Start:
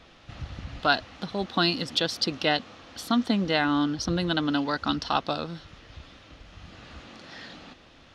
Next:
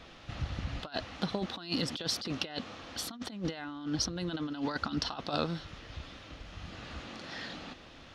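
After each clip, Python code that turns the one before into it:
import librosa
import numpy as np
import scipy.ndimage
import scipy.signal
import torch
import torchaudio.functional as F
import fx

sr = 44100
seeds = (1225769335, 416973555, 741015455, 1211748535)

y = fx.over_compress(x, sr, threshold_db=-30.0, ratio=-0.5)
y = y * 10.0 ** (-3.5 / 20.0)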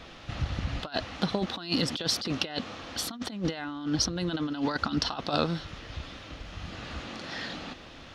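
y = fx.end_taper(x, sr, db_per_s=540.0)
y = y * 10.0 ** (5.0 / 20.0)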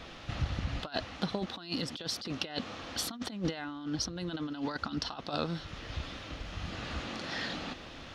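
y = fx.rider(x, sr, range_db=5, speed_s=0.5)
y = y * 10.0 ** (-4.5 / 20.0)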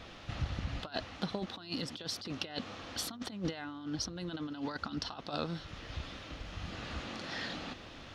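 y = fx.dmg_buzz(x, sr, base_hz=100.0, harmonics=15, level_db=-60.0, tilt_db=-5, odd_only=False)
y = y * 10.0 ** (-3.0 / 20.0)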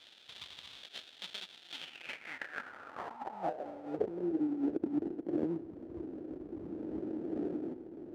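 y = fx.sample_hold(x, sr, seeds[0], rate_hz=1100.0, jitter_pct=20)
y = fx.filter_sweep_bandpass(y, sr, from_hz=3500.0, to_hz=330.0, start_s=1.71, end_s=4.33, q=4.9)
y = y * 10.0 ** (12.0 / 20.0)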